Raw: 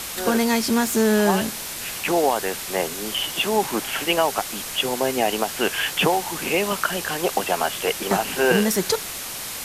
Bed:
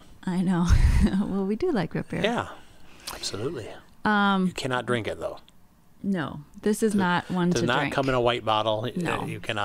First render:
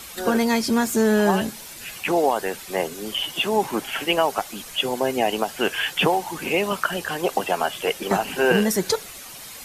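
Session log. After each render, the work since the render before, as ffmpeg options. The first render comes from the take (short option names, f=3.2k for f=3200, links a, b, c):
-af "afftdn=nr=10:nf=-32"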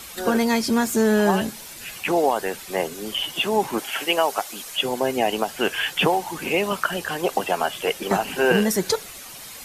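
-filter_complex "[0:a]asettb=1/sr,asplit=3[a][b][c];[a]atrim=end=3.784[d];[b]atrim=start=3.78:end=4.77,asetpts=PTS-STARTPTS,afade=t=in:d=0.004:c=qsin,afade=t=out:st=0.986:d=0.004:c=qsin,bass=f=250:g=-10,treble=f=4k:g=3[e];[c]atrim=start=4.766[f];[d][e]acrossfade=d=0.004:c1=hsin:c2=qsin[g];[g][f]acrossfade=d=0.004:c1=qsin:c2=hsin"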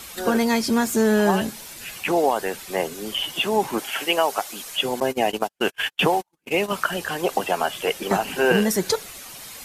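-filter_complex "[0:a]asettb=1/sr,asplit=3[a][b][c];[a]atrim=end=5.004[d];[b]atrim=start=5:end=6.73,asetpts=PTS-STARTPTS,afade=t=in:d=0.004:c=qsin,afade=t=out:st=1.726:d=0.004:c=qsin,agate=range=-48dB:threshold=-26dB:ratio=16:release=100:detection=peak[e];[c]atrim=start=6.726[f];[d][e]acrossfade=d=0.004:c1=hsin:c2=qsin[g];[g][f]acrossfade=d=0.004:c1=qsin:c2=hsin"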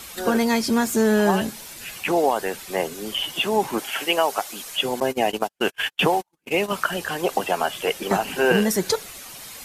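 -af anull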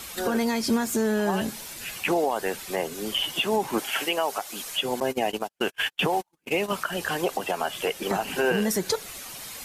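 -af "alimiter=limit=-14.5dB:level=0:latency=1:release=189"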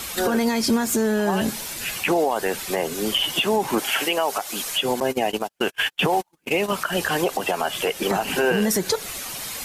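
-af "alimiter=limit=-18.5dB:level=0:latency=1:release=104,acontrast=81"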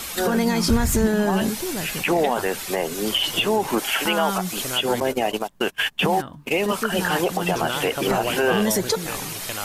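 -filter_complex "[1:a]volume=-4.5dB[a];[0:a][a]amix=inputs=2:normalize=0"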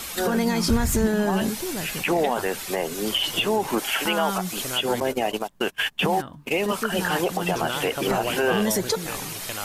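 -af "volume=-2dB"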